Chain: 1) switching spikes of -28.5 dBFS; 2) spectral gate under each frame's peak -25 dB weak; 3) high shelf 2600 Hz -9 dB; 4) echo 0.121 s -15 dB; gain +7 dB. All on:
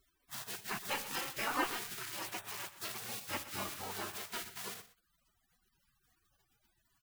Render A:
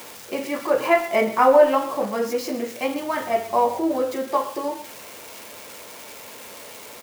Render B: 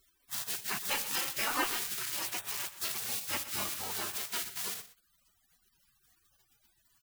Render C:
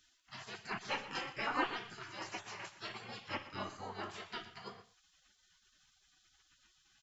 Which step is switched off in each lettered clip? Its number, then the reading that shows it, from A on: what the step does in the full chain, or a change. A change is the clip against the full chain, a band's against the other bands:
2, 500 Hz band +17.5 dB; 3, 8 kHz band +7.5 dB; 1, distortion -12 dB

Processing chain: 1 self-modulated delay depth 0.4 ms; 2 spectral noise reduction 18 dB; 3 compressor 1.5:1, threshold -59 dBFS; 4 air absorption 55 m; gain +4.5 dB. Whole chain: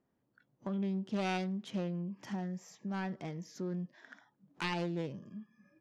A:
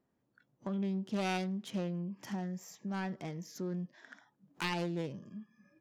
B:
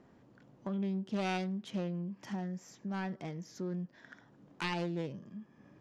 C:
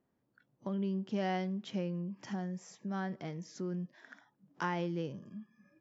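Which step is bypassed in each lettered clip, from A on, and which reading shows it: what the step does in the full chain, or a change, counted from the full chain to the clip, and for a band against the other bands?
4, momentary loudness spread change +1 LU; 2, momentary loudness spread change +3 LU; 1, 4 kHz band -3.5 dB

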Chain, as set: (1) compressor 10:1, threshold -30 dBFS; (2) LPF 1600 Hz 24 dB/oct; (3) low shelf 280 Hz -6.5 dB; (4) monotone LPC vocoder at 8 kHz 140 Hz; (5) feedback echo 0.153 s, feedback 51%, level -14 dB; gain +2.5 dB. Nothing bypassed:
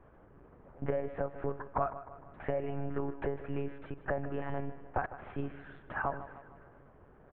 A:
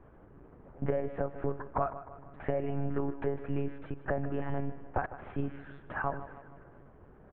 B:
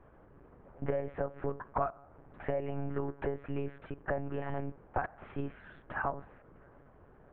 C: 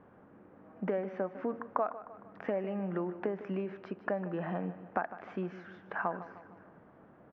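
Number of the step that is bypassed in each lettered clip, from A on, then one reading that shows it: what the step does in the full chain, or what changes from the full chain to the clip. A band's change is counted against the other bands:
3, 125 Hz band +3.0 dB; 5, echo-to-direct -12.5 dB to none; 4, 250 Hz band +3.5 dB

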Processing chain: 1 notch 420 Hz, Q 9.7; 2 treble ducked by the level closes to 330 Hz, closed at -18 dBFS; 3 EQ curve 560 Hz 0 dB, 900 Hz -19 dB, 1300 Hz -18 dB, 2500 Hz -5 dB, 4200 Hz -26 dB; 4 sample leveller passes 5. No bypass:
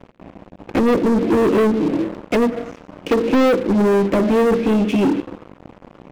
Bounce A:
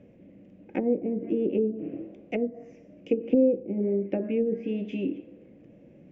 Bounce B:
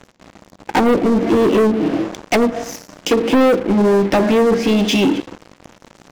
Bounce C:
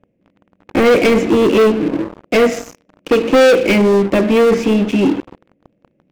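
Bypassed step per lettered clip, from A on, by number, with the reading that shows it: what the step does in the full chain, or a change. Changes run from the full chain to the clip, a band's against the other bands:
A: 4, crest factor change +11.0 dB; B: 3, 4 kHz band +7.0 dB; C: 2, 4 kHz band +6.5 dB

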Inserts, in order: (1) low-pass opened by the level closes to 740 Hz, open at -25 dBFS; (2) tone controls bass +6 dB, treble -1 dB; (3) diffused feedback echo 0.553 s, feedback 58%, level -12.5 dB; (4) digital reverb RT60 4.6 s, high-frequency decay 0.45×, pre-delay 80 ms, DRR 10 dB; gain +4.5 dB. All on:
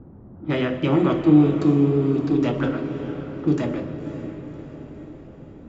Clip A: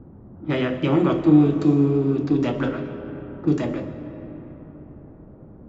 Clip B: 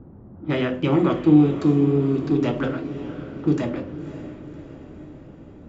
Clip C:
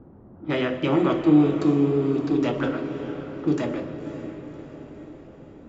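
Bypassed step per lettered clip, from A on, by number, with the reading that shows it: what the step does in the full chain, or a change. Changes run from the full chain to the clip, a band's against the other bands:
3, echo-to-direct -7.0 dB to -10.0 dB; 4, echo-to-direct -7.0 dB to -10.5 dB; 2, loudness change -2.0 LU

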